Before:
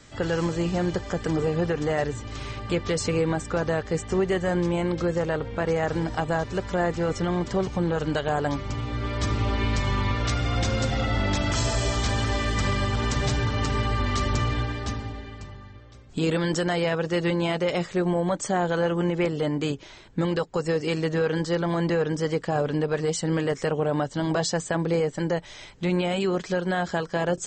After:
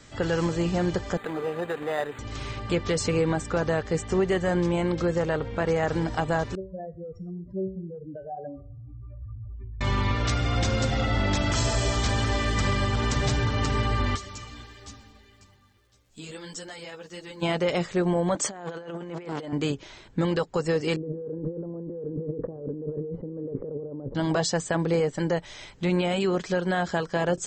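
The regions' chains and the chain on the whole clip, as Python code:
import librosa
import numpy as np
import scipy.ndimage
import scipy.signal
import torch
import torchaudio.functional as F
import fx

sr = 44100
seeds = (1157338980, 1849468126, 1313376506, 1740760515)

y = fx.chain(x, sr, fx.weighting(curve='A'),
    fx.resample_linear(factor=8), at=(1.17, 2.19))
y = fx.chain(y, sr, fx.spec_expand(power=3.7),
    fx.comb_fb(f0_hz=190.0, decay_s=0.47, harmonics='all', damping=0.0, mix_pct=80),
    fx.echo_wet_lowpass(ms=85, feedback_pct=52, hz=440.0, wet_db=-16.5), at=(6.55, 9.81))
y = fx.pre_emphasis(y, sr, coefficient=0.8, at=(14.15, 17.41), fade=0.02)
y = fx.dmg_crackle(y, sr, seeds[0], per_s=270.0, level_db=-54.0, at=(14.15, 17.41), fade=0.02)
y = fx.ensemble(y, sr, at=(14.15, 17.41), fade=0.02)
y = fx.chain(y, sr, fx.highpass(hz=190.0, slope=12),
    fx.over_compress(threshold_db=-31.0, ratio=-0.5),
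    fx.transformer_sat(knee_hz=1100.0), at=(18.35, 19.53))
y = fx.chain(y, sr, fx.lowpass(hz=1000.0, slope=24),
    fx.over_compress(threshold_db=-37.0, ratio=-1.0),
    fx.curve_eq(hz=(110.0, 500.0, 710.0), db=(0, 6, -12)), at=(20.96, 24.15))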